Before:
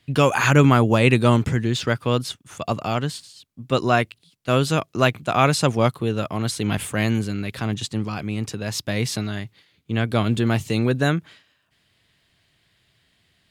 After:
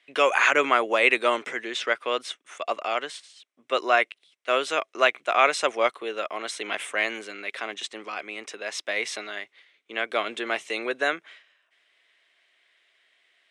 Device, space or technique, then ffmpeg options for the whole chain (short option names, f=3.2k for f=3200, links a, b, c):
phone speaker on a table: -af "highpass=f=440:w=0.5412,highpass=f=440:w=1.3066,equalizer=f=480:t=q:w=4:g=-3,equalizer=f=870:t=q:w=4:g=-5,equalizer=f=2.1k:t=q:w=4:g=6,equalizer=f=4.6k:t=q:w=4:g=-10,equalizer=f=7k:t=q:w=4:g=-6,lowpass=f=8.1k:w=0.5412,lowpass=f=8.1k:w=1.3066"